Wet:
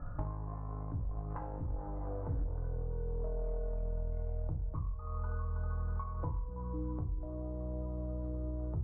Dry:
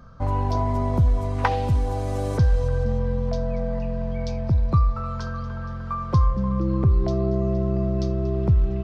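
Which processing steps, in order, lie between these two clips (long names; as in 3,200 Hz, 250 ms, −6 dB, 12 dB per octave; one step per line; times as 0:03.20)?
source passing by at 0:02.17, 23 m/s, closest 15 metres
parametric band 230 Hz −7.5 dB 0.85 octaves
mains-hum notches 60/120/180 Hz
harmonic generator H 5 −20 dB, 8 −15 dB, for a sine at −9.5 dBFS
low-pass filter 1,300 Hz 24 dB per octave
downward compressor 20 to 1, threshold −47 dBFS, peak gain reduction 33 dB
low-shelf EQ 88 Hz +10 dB
on a send: convolution reverb RT60 0.35 s, pre-delay 3 ms, DRR 3 dB
on the sum: level +7 dB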